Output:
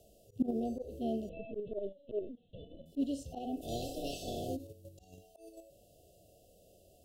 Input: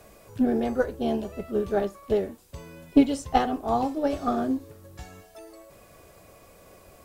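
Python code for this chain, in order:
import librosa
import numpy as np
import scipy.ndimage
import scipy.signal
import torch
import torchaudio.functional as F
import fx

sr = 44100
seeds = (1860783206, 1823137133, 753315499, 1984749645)

p1 = fx.spec_clip(x, sr, under_db=25, at=(3.61, 4.55), fade=0.02)
p2 = fx.brickwall_bandstop(p1, sr, low_hz=760.0, high_hz=2600.0)
p3 = fx.lpc_vocoder(p2, sr, seeds[0], excitation='pitch_kept', order=16, at=(1.29, 2.86))
p4 = fx.vibrato(p3, sr, rate_hz=5.2, depth_cents=8.6)
p5 = fx.hpss(p4, sr, part='percussive', gain_db=-11)
p6 = fx.level_steps(p5, sr, step_db=24)
p7 = p5 + (p6 * librosa.db_to_amplitude(3.0))
p8 = fx.auto_swell(p7, sr, attack_ms=143.0)
y = p8 * librosa.db_to_amplitude(-8.5)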